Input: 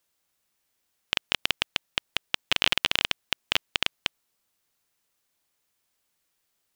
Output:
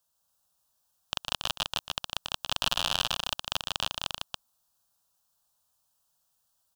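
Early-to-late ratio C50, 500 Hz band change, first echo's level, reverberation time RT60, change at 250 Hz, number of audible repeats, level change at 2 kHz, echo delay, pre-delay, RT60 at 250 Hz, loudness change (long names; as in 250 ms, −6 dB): no reverb audible, −2.0 dB, −13.0 dB, no reverb audible, −4.5 dB, 3, −8.5 dB, 118 ms, no reverb audible, no reverb audible, −4.0 dB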